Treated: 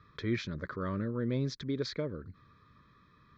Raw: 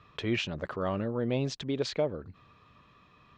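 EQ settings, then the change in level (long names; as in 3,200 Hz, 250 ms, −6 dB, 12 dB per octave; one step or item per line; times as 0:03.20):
high-shelf EQ 5,900 Hz −7 dB
phaser with its sweep stopped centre 2,800 Hz, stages 6
0.0 dB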